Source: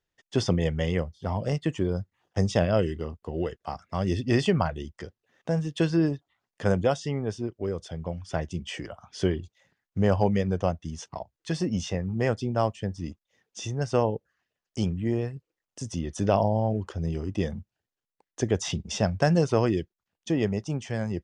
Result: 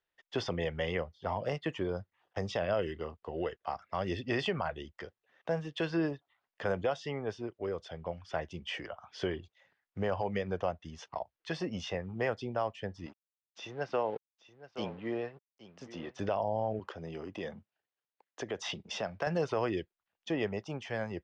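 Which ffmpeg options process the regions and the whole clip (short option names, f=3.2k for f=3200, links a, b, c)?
-filter_complex "[0:a]asettb=1/sr,asplit=3[a][b][c];[a]atrim=end=13.064[d];[b]atrim=start=13.06:end=16.19,asetpts=PTS-STARTPTS,afade=t=in:d=0.004:c=qsin,afade=t=out:st=3.126:d=0.004:c=qsin,aeval=exprs='sgn(val(0))*max(abs(val(0))-0.00355,0)':c=same,highpass=170,lowpass=5.1k,aecho=1:1:823:0.158,atrim=end_sample=138033[e];[c]atrim=start=16.186[f];[d][e]acrossfade=d=0.004:c1=hsin:c2=qsin[g];[g][f]acrossfade=d=0.004:c1=qsin:c2=hsin,asettb=1/sr,asplit=3[h][i][j];[h]atrim=end=16.794[k];[i]atrim=start=16.79:end=19.27,asetpts=PTS-STARTPTS,afade=t=in:d=0.004:c=qsin,afade=t=out:st=2.476:d=0.004:c=qsin,highpass=140,acompressor=threshold=-28dB:ratio=2.5:attack=3.2:release=140:knee=1:detection=peak[l];[j]atrim=start=19.266[m];[k][l]acrossfade=d=0.004:c1=hsin:c2=qsin[n];[n][m]acrossfade=d=0.004:c1=qsin:c2=hsin,acrossover=split=440 4400:gain=0.251 1 0.0708[o][p][q];[o][p][q]amix=inputs=3:normalize=0,alimiter=limit=-21dB:level=0:latency=1:release=95"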